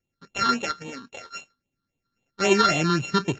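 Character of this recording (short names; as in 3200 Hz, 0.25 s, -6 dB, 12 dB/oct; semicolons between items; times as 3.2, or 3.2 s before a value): a buzz of ramps at a fixed pitch in blocks of 32 samples; phasing stages 6, 3.7 Hz, lowest notch 640–1400 Hz; AAC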